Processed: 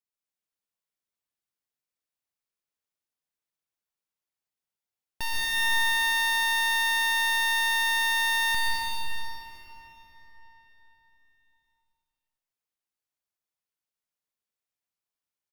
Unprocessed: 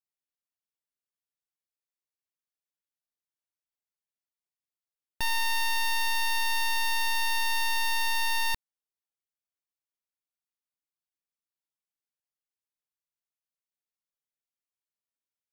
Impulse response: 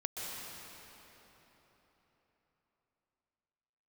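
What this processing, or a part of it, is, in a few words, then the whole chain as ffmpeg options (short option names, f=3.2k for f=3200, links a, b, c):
cave: -filter_complex "[0:a]aecho=1:1:155:0.211[a];[1:a]atrim=start_sample=2205[b];[a][b]afir=irnorm=-1:irlink=0"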